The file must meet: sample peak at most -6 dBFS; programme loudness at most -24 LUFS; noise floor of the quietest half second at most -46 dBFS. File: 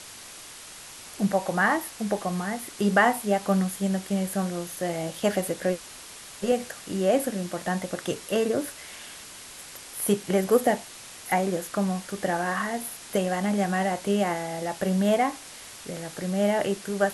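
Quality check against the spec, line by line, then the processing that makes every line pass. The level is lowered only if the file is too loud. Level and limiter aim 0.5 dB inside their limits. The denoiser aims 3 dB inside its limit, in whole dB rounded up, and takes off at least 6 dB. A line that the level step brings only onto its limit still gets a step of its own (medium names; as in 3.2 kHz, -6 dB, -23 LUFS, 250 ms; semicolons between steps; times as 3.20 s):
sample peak -8.0 dBFS: pass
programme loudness -26.5 LUFS: pass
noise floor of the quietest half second -44 dBFS: fail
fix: noise reduction 6 dB, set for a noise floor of -44 dBFS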